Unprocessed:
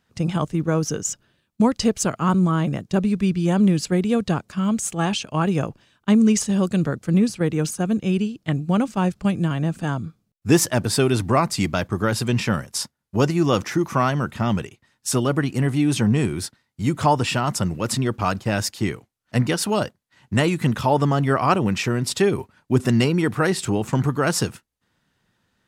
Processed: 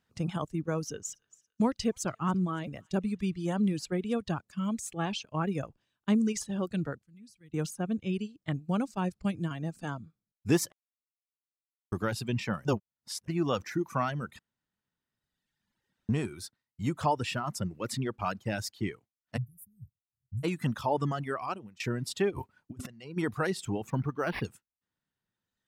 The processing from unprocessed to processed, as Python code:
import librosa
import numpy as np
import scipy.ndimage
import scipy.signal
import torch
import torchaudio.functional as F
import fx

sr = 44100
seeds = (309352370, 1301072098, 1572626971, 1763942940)

y = fx.echo_wet_highpass(x, sr, ms=280, feedback_pct=37, hz=1700.0, wet_db=-16.0, at=(0.75, 4.22))
y = fx.tone_stack(y, sr, knobs='6-0-2', at=(7.03, 7.54))
y = fx.cheby2_bandstop(y, sr, low_hz=610.0, high_hz=3400.0, order=4, stop_db=80, at=(19.36, 20.43), fade=0.02)
y = fx.over_compress(y, sr, threshold_db=-29.0, ratio=-1.0, at=(22.3, 23.16), fade=0.02)
y = fx.resample_linear(y, sr, factor=6, at=(23.9, 24.45))
y = fx.edit(y, sr, fx.silence(start_s=10.72, length_s=1.2),
    fx.reverse_span(start_s=12.65, length_s=0.63),
    fx.room_tone_fill(start_s=14.39, length_s=1.7),
    fx.fade_out_to(start_s=21.16, length_s=0.64, floor_db=-23.0), tone=tone)
y = fx.dereverb_blind(y, sr, rt60_s=1.7)
y = fx.dynamic_eq(y, sr, hz=8300.0, q=0.79, threshold_db=-40.0, ratio=4.0, max_db=-4)
y = y * 10.0 ** (-9.0 / 20.0)